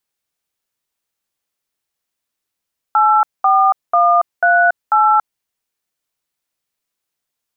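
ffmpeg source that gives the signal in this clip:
ffmpeg -f lavfi -i "aevalsrc='0.266*clip(min(mod(t,0.492),0.281-mod(t,0.492))/0.002,0,1)*(eq(floor(t/0.492),0)*(sin(2*PI*852*mod(t,0.492))+sin(2*PI*1336*mod(t,0.492)))+eq(floor(t/0.492),1)*(sin(2*PI*770*mod(t,0.492))+sin(2*PI*1209*mod(t,0.492)))+eq(floor(t/0.492),2)*(sin(2*PI*697*mod(t,0.492))+sin(2*PI*1209*mod(t,0.492)))+eq(floor(t/0.492),3)*(sin(2*PI*697*mod(t,0.492))+sin(2*PI*1477*mod(t,0.492)))+eq(floor(t/0.492),4)*(sin(2*PI*852*mod(t,0.492))+sin(2*PI*1336*mod(t,0.492))))':duration=2.46:sample_rate=44100" out.wav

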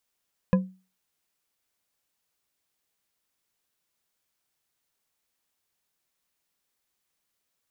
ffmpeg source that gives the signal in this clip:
ffmpeg -f lavfi -i "aevalsrc='0.2*pow(10,-3*t/0.33)*sin(2*PI*187*t)+0.1*pow(10,-3*t/0.162)*sin(2*PI*515.6*t)+0.0501*pow(10,-3*t/0.101)*sin(2*PI*1010.5*t)+0.0251*pow(10,-3*t/0.071)*sin(2*PI*1670.5*t)+0.0126*pow(10,-3*t/0.054)*sin(2*PI*2494.6*t)':duration=0.89:sample_rate=44100" out.wav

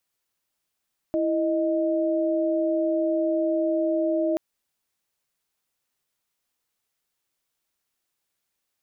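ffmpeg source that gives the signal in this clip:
ffmpeg -f lavfi -i "aevalsrc='0.0668*(sin(2*PI*329.63*t)+sin(2*PI*622.25*t))':duration=3.23:sample_rate=44100" out.wav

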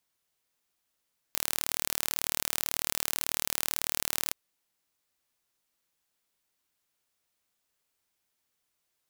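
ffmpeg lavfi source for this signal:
ffmpeg -f lavfi -i "aevalsrc='0.794*eq(mod(n,1157),0)':duration=2.97:sample_rate=44100" out.wav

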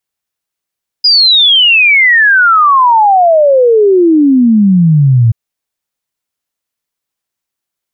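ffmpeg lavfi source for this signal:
ffmpeg -f lavfi -i "aevalsrc='0.668*clip(min(t,4.28-t)/0.01,0,1)*sin(2*PI*5000*4.28/log(110/5000)*(exp(log(110/5000)*t/4.28)-1))':duration=4.28:sample_rate=44100" out.wav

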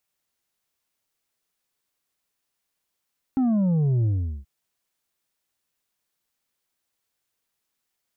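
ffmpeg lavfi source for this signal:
ffmpeg -f lavfi -i "aevalsrc='0.112*clip((1.08-t)/0.4,0,1)*tanh(1.78*sin(2*PI*270*1.08/log(65/270)*(exp(log(65/270)*t/1.08)-1)))/tanh(1.78)':duration=1.08:sample_rate=44100" out.wav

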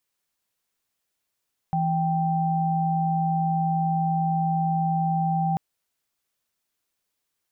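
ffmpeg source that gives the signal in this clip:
ffmpeg -f lavfi -i "aevalsrc='0.0668*(sin(2*PI*164.81*t)+sin(2*PI*783.99*t))':duration=3.84:sample_rate=44100" out.wav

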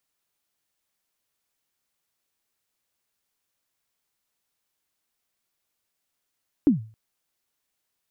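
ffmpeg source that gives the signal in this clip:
ffmpeg -f lavfi -i "aevalsrc='0.299*pow(10,-3*t/0.38)*sin(2*PI*(320*0.129/log(110/320)*(exp(log(110/320)*min(t,0.129)/0.129)-1)+110*max(t-0.129,0)))':duration=0.27:sample_rate=44100" out.wav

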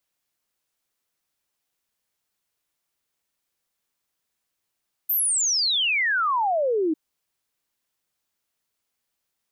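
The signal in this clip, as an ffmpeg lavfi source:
ffmpeg -f lavfi -i "aevalsrc='0.106*clip(min(t,1.85-t)/0.01,0,1)*sin(2*PI*14000*1.85/log(300/14000)*(exp(log(300/14000)*t/1.85)-1))':duration=1.85:sample_rate=44100" out.wav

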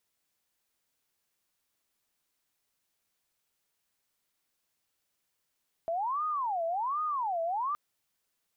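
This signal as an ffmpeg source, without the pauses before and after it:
ffmpeg -f lavfi -i "aevalsrc='0.0376*sin(2*PI*(949.5*t-290.5/(2*PI*1.3)*sin(2*PI*1.3*t)))':duration=1.87:sample_rate=44100" out.wav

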